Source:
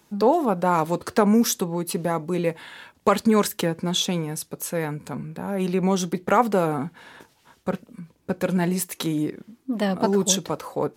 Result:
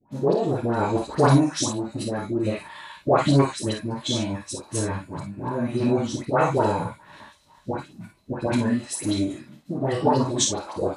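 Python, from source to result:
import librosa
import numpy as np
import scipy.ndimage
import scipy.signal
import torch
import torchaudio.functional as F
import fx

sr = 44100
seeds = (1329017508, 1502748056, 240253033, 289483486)

p1 = fx.rotary_switch(x, sr, hz=0.6, then_hz=8.0, switch_at_s=4.47)
p2 = fx.small_body(p1, sr, hz=(920.0, 4000.0), ring_ms=40, db=13)
p3 = fx.dispersion(p2, sr, late='highs', ms=125.0, hz=1600.0)
p4 = fx.pitch_keep_formants(p3, sr, semitones=-7.5)
y = p4 + fx.room_early_taps(p4, sr, ms=(29, 51, 65), db=(-8.0, -6.0, -11.5), dry=0)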